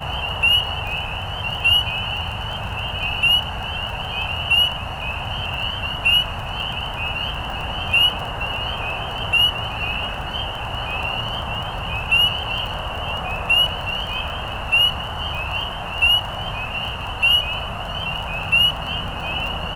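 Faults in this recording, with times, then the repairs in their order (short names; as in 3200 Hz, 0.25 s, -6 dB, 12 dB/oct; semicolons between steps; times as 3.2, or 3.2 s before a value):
crackle 20/s -27 dBFS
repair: de-click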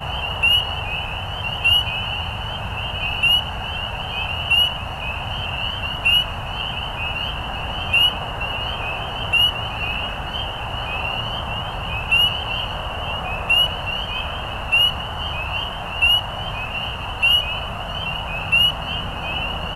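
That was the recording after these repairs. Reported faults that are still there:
none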